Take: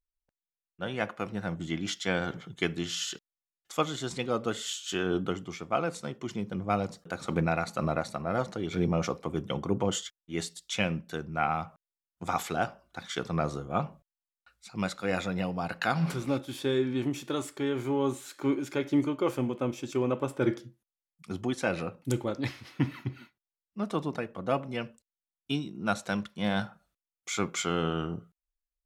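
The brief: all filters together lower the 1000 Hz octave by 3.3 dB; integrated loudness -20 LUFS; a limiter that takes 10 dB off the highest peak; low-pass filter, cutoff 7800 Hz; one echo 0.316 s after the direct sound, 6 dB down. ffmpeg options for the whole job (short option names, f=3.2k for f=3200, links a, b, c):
-af "lowpass=7.8k,equalizer=f=1k:t=o:g=-5,alimiter=limit=-23.5dB:level=0:latency=1,aecho=1:1:316:0.501,volume=15dB"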